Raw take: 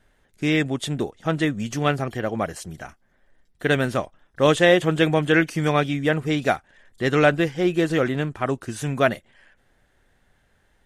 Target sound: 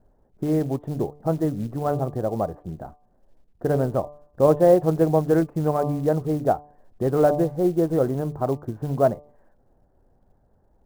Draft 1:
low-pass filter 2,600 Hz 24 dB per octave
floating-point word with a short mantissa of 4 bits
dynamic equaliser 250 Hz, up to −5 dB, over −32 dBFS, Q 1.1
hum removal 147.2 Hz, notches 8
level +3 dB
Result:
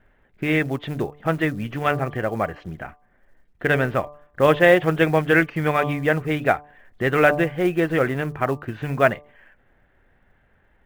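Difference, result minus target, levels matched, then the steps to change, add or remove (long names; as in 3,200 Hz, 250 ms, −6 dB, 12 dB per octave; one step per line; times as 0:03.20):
2,000 Hz band +19.0 dB
change: low-pass filter 900 Hz 24 dB per octave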